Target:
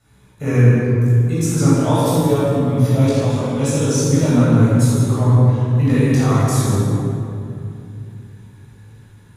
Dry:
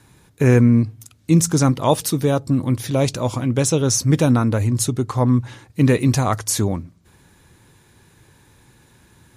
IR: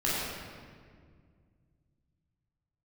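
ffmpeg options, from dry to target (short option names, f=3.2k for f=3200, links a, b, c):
-filter_complex "[0:a]flanger=delay=16:depth=4.5:speed=0.42[a];[1:a]atrim=start_sample=2205,asetrate=30429,aresample=44100[b];[a][b]afir=irnorm=-1:irlink=0,volume=-9.5dB"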